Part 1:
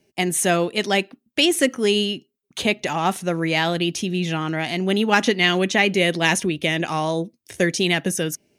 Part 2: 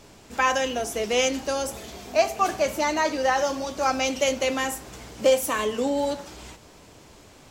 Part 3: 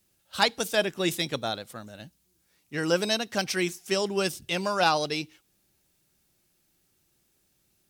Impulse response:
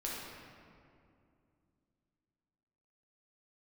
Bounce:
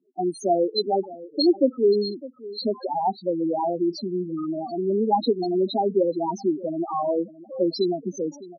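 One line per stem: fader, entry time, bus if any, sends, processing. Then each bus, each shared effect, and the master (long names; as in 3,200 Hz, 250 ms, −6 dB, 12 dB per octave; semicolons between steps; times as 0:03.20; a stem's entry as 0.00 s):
+2.5 dB, 0.00 s, no bus, no send, echo send −18 dB, drawn EQ curve 1,200 Hz 0 dB, 2,400 Hz −29 dB, 4,200 Hz +11 dB, 7,900 Hz −13 dB
−11.0 dB, 2.25 s, bus A, send −10.5 dB, no echo send, soft clipping −11.5 dBFS, distortion −22 dB
−12.0 dB, 0.00 s, bus A, send −22 dB, echo send −5 dB, comb filter 7 ms, depth 98%
bus A: 0.0 dB, downward compressor 16 to 1, threshold −41 dBFS, peak gain reduction 17 dB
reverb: on, RT60 2.5 s, pre-delay 6 ms
echo: single-tap delay 608 ms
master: spectral peaks only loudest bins 4; high-pass filter 250 Hz 24 dB per octave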